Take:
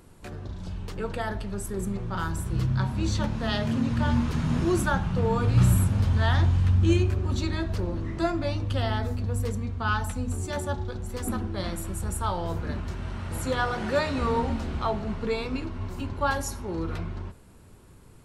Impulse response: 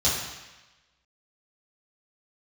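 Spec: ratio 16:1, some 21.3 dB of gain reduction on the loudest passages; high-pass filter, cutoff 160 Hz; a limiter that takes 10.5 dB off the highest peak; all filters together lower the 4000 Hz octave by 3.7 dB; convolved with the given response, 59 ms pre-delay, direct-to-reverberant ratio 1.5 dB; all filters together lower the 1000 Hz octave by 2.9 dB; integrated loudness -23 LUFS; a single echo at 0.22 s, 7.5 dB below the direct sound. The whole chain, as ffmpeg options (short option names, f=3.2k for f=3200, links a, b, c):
-filter_complex "[0:a]highpass=160,equalizer=f=1k:t=o:g=-3.5,equalizer=f=4k:t=o:g=-4.5,acompressor=threshold=-42dB:ratio=16,alimiter=level_in=18dB:limit=-24dB:level=0:latency=1,volume=-18dB,aecho=1:1:220:0.422,asplit=2[a][b];[1:a]atrim=start_sample=2205,adelay=59[c];[b][c]afir=irnorm=-1:irlink=0,volume=-14.5dB[d];[a][d]amix=inputs=2:normalize=0,volume=23.5dB"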